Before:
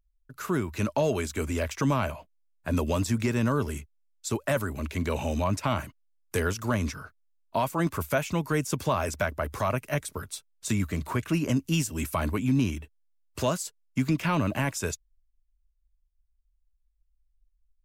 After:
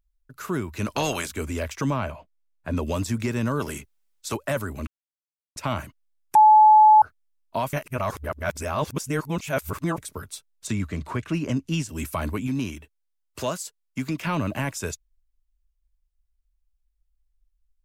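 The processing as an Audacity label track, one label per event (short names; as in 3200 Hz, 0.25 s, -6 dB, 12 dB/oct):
0.860000	1.310000	spectral limiter ceiling under each frame's peak by 20 dB
1.900000	2.830000	LPF 3500 Hz 6 dB/oct
3.590000	4.340000	spectral limiter ceiling under each frame's peak by 14 dB
4.870000	5.560000	mute
6.350000	7.020000	bleep 859 Hz -9.5 dBFS
7.730000	9.980000	reverse
10.670000	11.890000	air absorption 52 m
12.470000	14.270000	low shelf 210 Hz -7 dB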